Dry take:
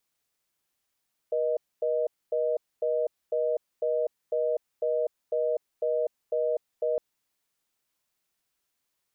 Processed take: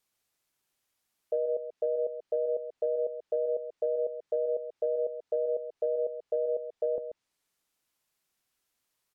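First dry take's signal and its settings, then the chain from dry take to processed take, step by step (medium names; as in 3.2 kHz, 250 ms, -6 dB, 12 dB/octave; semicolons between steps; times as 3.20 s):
call progress tone reorder tone, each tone -26.5 dBFS 5.66 s
low-pass that closes with the level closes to 600 Hz, closed at -25 dBFS; on a send: delay 135 ms -9.5 dB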